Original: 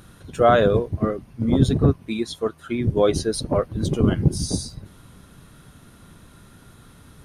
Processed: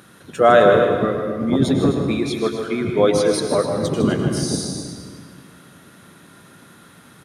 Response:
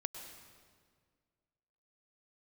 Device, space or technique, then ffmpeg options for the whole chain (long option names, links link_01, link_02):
stadium PA: -filter_complex "[0:a]highpass=180,equalizer=frequency=1800:width_type=o:width=0.75:gain=4,aecho=1:1:154.5|256.6:0.355|0.251[link_01];[1:a]atrim=start_sample=2205[link_02];[link_01][link_02]afir=irnorm=-1:irlink=0,volume=4dB"